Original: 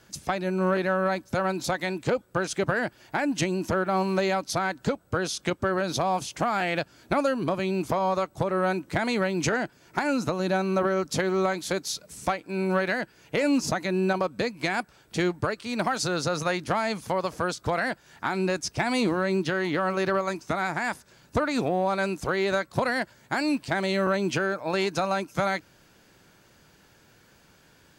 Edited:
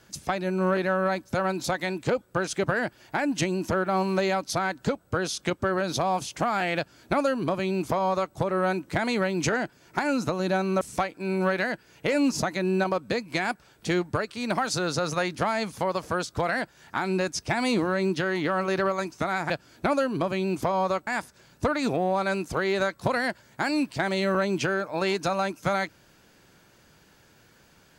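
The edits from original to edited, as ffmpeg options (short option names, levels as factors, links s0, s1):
-filter_complex "[0:a]asplit=4[s0][s1][s2][s3];[s0]atrim=end=10.812[s4];[s1]atrim=start=12.098:end=20.792[s5];[s2]atrim=start=6.768:end=8.342[s6];[s3]atrim=start=20.788[s7];[s4][s5]acrossfade=d=0.004:c1=hsin:c2=hsin[s8];[s8][s6]acrossfade=d=0.004:c1=hsin:c2=hsin[s9];[s9][s7]acrossfade=d=0.004:c1=hsin:c2=hsin"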